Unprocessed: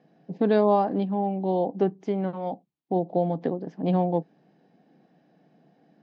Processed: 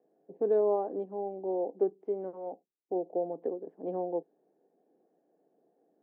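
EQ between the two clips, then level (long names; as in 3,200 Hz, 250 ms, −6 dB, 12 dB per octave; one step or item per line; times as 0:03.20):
four-pole ladder band-pass 480 Hz, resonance 50%
+2.0 dB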